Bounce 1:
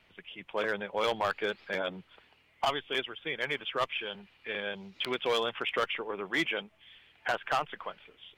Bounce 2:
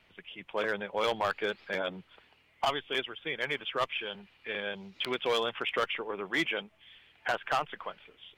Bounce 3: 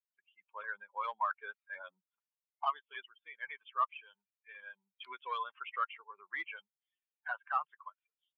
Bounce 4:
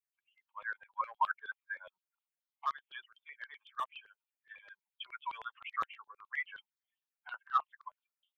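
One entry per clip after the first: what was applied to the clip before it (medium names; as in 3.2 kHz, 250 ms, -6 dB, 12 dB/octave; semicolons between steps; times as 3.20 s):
no audible change
expander on every frequency bin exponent 2; resonant high-pass 1.1 kHz, resonance Q 4.2; distance through air 490 m; trim -4 dB
hard clipper -26 dBFS, distortion -18 dB; LFO high-pass saw down 9.6 Hz 490–3700 Hz; stepped phaser 7.9 Hz 930–2800 Hz; trim -1 dB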